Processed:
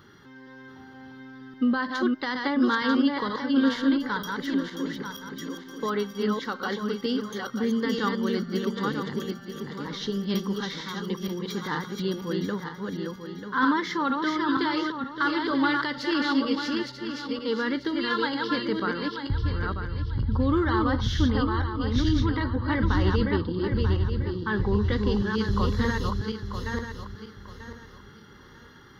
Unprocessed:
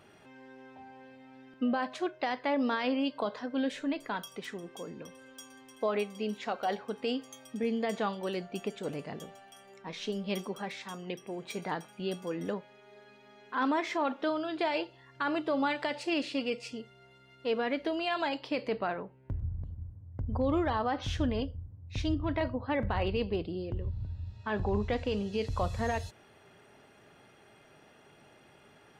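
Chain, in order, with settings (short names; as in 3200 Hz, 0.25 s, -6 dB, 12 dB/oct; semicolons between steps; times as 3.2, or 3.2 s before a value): regenerating reverse delay 0.47 s, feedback 52%, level -3 dB; fixed phaser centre 2500 Hz, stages 6; gain +8.5 dB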